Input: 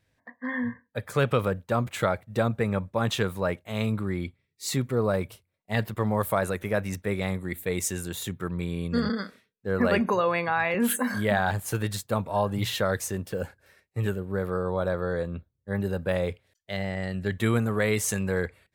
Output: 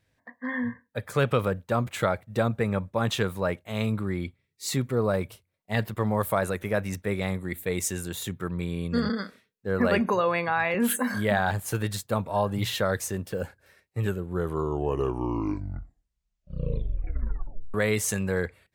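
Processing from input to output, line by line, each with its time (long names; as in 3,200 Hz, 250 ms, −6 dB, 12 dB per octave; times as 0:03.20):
0:14.03: tape stop 3.71 s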